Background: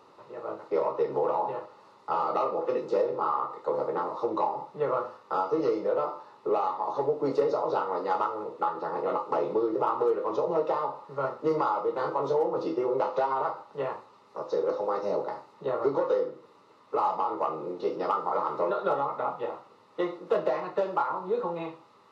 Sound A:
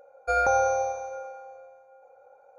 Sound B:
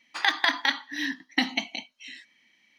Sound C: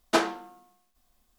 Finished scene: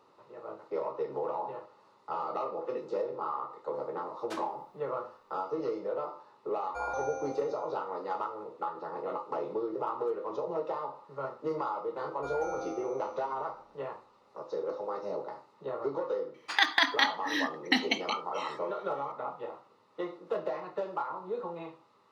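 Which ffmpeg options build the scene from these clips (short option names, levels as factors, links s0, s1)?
-filter_complex "[1:a]asplit=2[s0][s1];[0:a]volume=0.447[s2];[3:a]acrossover=split=570[s3][s4];[s3]adelay=70[s5];[s5][s4]amix=inputs=2:normalize=0[s6];[s1]asplit=7[s7][s8][s9][s10][s11][s12][s13];[s8]adelay=191,afreqshift=-100,volume=0.398[s14];[s9]adelay=382,afreqshift=-200,volume=0.191[s15];[s10]adelay=573,afreqshift=-300,volume=0.0912[s16];[s11]adelay=764,afreqshift=-400,volume=0.0442[s17];[s12]adelay=955,afreqshift=-500,volume=0.0211[s18];[s13]adelay=1146,afreqshift=-600,volume=0.0101[s19];[s7][s14][s15][s16][s17][s18][s19]amix=inputs=7:normalize=0[s20];[s6]atrim=end=1.38,asetpts=PTS-STARTPTS,volume=0.133,afade=t=in:d=0.004:c=hsin,afade=t=out:st=1.376:d=0.004:c=hsin,adelay=183897S[s21];[s0]atrim=end=2.58,asetpts=PTS-STARTPTS,volume=0.2,afade=t=in:d=0.004:c=hsin,afade=t=out:st=2.576:d=0.004:c=hsin,adelay=6470[s22];[s20]atrim=end=2.58,asetpts=PTS-STARTPTS,volume=0.141,afade=t=in:d=0.004:c=hsin,afade=t=out:st=2.576:d=0.004:c=hsin,adelay=11950[s23];[2:a]atrim=end=2.78,asetpts=PTS-STARTPTS,volume=0.841,afade=t=in:d=0.004:c=hsin,afade=t=out:st=2.776:d=0.004:c=hsin,adelay=16340[s24];[s2][s21][s22][s23][s24]amix=inputs=5:normalize=0"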